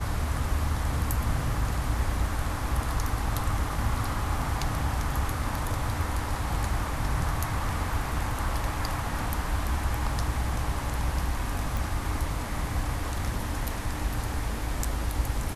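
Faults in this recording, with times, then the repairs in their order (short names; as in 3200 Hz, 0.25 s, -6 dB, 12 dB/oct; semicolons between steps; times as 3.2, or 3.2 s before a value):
11.77 pop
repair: de-click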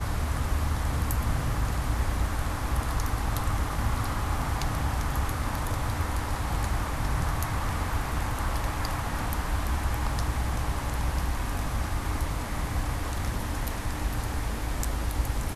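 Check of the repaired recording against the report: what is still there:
none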